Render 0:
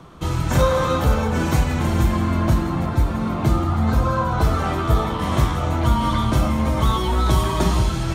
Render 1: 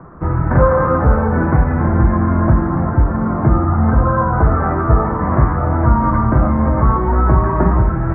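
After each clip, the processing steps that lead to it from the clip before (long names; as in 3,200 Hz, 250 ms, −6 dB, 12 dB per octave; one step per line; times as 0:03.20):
Butterworth low-pass 1,800 Hz 48 dB per octave
level +5.5 dB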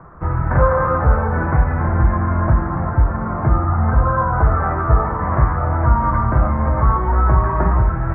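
parametric band 260 Hz −9 dB 1.7 octaves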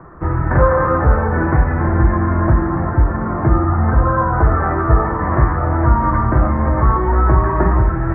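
hollow resonant body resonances 330/1,800 Hz, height 8 dB, ringing for 25 ms
level +1 dB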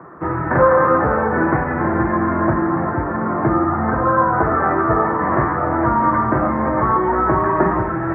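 high-pass filter 190 Hz 12 dB per octave
level +2 dB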